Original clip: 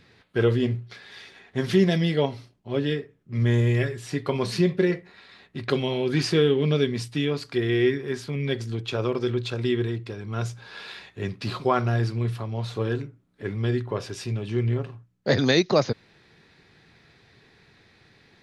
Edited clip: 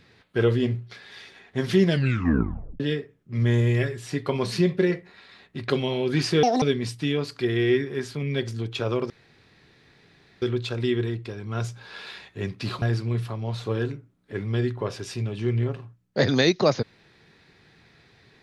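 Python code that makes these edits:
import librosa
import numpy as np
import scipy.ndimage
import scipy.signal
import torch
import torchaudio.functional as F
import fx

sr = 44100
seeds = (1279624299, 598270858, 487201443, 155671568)

y = fx.edit(x, sr, fx.tape_stop(start_s=1.86, length_s=0.94),
    fx.speed_span(start_s=6.43, length_s=0.32, speed=1.69),
    fx.insert_room_tone(at_s=9.23, length_s=1.32),
    fx.cut(start_s=11.63, length_s=0.29), tone=tone)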